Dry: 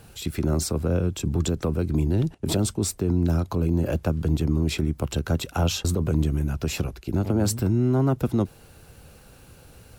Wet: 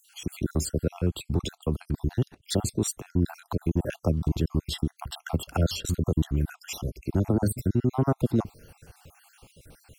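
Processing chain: random spectral dropouts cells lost 54%

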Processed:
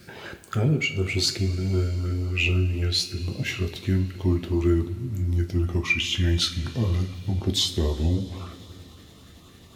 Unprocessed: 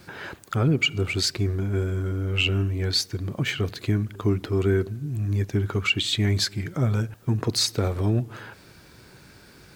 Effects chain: gliding pitch shift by -4.5 st starting unshifted; LFO notch saw up 3.9 Hz 820–1900 Hz; two-slope reverb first 0.35 s, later 4.6 s, from -19 dB, DRR 5 dB

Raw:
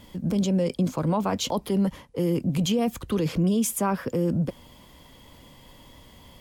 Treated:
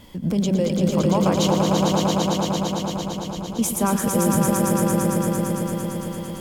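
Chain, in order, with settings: 1.54–3.59 passive tone stack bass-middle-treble 10-0-1; swelling echo 0.113 s, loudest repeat 5, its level -4.5 dB; gain +2.5 dB

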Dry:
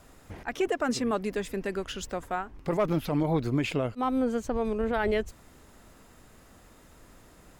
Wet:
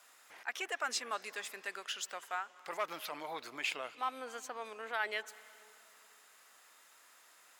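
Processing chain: HPF 1200 Hz 12 dB/oct; on a send: reverb RT60 2.6 s, pre-delay 0.172 s, DRR 19 dB; on the sum: gain -1 dB

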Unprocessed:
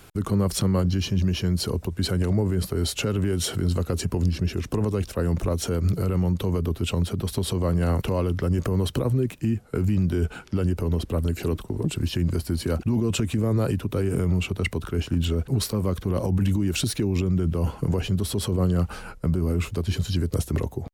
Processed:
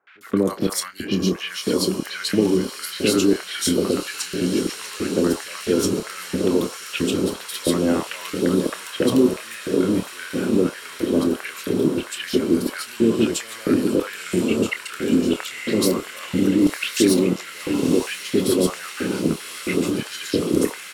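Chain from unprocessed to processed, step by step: on a send: diffused feedback echo 1.018 s, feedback 79%, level -7.5 dB; on the sum: LFO high-pass square 1.5 Hz 290–1800 Hz; doubler 27 ms -10 dB; three bands offset in time lows, mids, highs 70/210 ms, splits 730/3200 Hz; gain +4.5 dB

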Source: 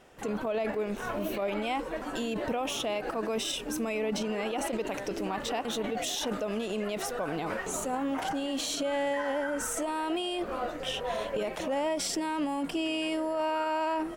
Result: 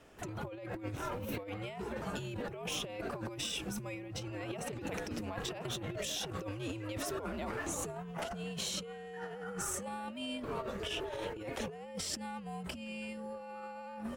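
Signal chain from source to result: negative-ratio compressor -34 dBFS, ratio -0.5; frequency shift -100 Hz; gain -5.5 dB

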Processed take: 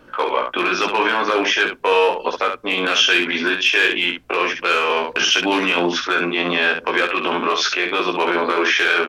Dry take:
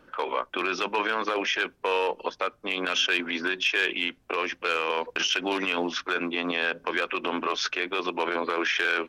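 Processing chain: early reflections 17 ms -3.5 dB, 69 ms -5.5 dB; gain +7 dB

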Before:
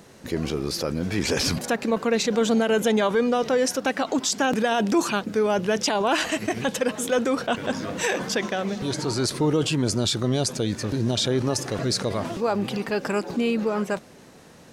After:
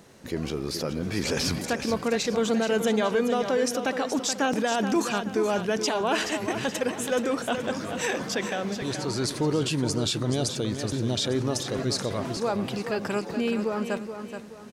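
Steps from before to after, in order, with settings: crackle 60/s -54 dBFS; on a send: feedback echo 0.426 s, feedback 38%, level -8.5 dB; on the sum: gain -3.5 dB

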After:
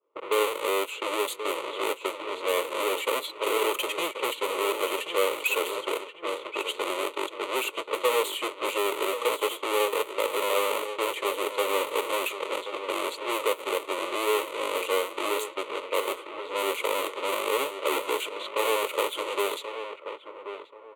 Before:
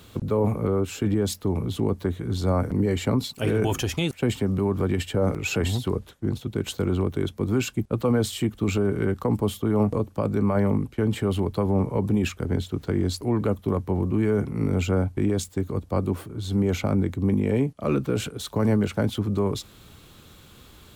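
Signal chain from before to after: half-waves squared off; HPF 410 Hz 24 dB/oct; expander -37 dBFS; fixed phaser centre 1100 Hz, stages 8; feedback echo 1.082 s, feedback 28%, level -10 dB; low-pass opened by the level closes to 950 Hz, open at -24 dBFS

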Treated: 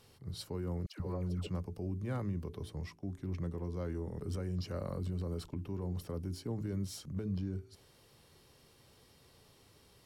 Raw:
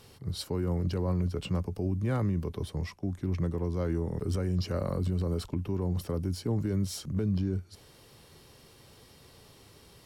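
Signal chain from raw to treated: de-hum 54.78 Hz, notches 8; 0.86–1.47 dispersion lows, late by 0.136 s, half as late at 760 Hz; gain -7.5 dB

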